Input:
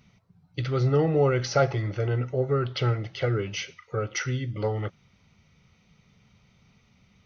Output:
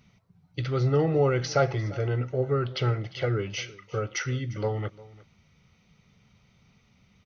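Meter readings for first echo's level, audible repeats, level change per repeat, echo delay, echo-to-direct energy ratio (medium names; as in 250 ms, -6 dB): -20.5 dB, 1, no regular repeats, 350 ms, -20.5 dB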